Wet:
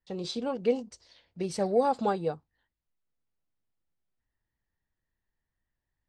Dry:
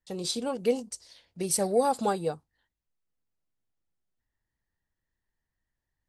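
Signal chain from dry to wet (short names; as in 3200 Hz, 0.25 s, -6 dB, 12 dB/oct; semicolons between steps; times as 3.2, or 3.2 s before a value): air absorption 150 m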